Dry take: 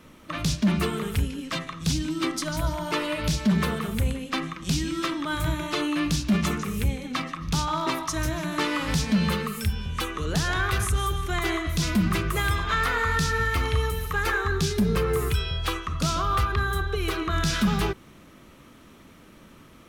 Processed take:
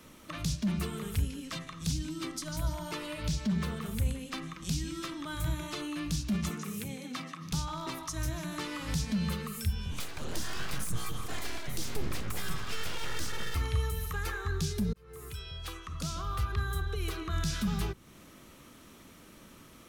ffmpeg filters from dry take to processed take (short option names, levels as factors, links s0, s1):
-filter_complex "[0:a]asettb=1/sr,asplit=3[s0][s1][s2];[s0]atrim=end=3.234[s3];[s1]atrim=start=3.23:end=3.86,asetpts=PTS-STARTPTS,afade=t=in:d=0.004:c=qsin,afade=t=out:st=0.626:d=0.004:c=qsin,equalizer=f=12000:t=o:w=0.75:g=-8[s4];[s2]atrim=start=3.856[s5];[s3][s4]acrossfade=d=0.004:c1=hsin:c2=qsin[s6];[s6][s5]acrossfade=d=0.004:c1=qsin:c2=hsin,asettb=1/sr,asplit=3[s7][s8][s9];[s7]atrim=end=6.494[s10];[s8]atrim=start=6.49:end=7.52,asetpts=PTS-STARTPTS,afade=t=in:d=0.004:c=qsin,afade=t=out:st=1.026:d=0.004:c=qsin,highpass=f=140:w=0.5412,highpass=f=140:w=1.3066[s11];[s9]atrim=start=7.516[s12];[s10][s11]acrossfade=d=0.004:c1=hsin:c2=qsin[s13];[s13][s12]acrossfade=d=0.004:c1=qsin:c2=hsin,asettb=1/sr,asplit=3[s14][s15][s16];[s14]atrim=end=9.914[s17];[s15]atrim=start=9.91:end=13.55,asetpts=PTS-STARTPTS,afade=t=in:d=0.004:c=qsin,afade=t=out:st=3.636:d=0.004:c=qsin,aeval=exprs='abs(val(0))':c=same[s18];[s16]atrim=start=13.546[s19];[s17][s18]acrossfade=d=0.004:c1=hsin:c2=qsin[s20];[s20][s19]acrossfade=d=0.004:c1=qsin:c2=hsin,asplit=2[s21][s22];[s21]atrim=end=14.93,asetpts=PTS-STARTPTS,afade=t=out:st=14.926:d=0.004:c=hsin[s23];[s22]atrim=start=14.93,asetpts=PTS-STARTPTS,afade=t=in:d=1.75[s24];[s23][s24]concat=n=2:v=0:a=1,bass=f=250:g=-1,treble=f=4000:g=7,acrossover=split=180[s25][s26];[s26]acompressor=threshold=0.01:ratio=2[s27];[s25][s27]amix=inputs=2:normalize=0,volume=0.668"